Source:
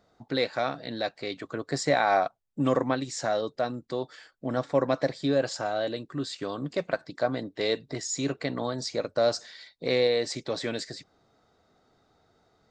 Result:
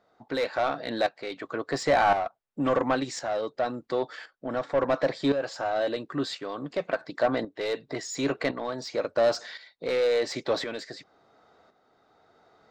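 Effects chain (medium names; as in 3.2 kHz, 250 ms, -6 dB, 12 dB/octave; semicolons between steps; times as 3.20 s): overdrive pedal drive 18 dB, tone 1.5 kHz, clips at -11 dBFS; tremolo saw up 0.94 Hz, depth 65%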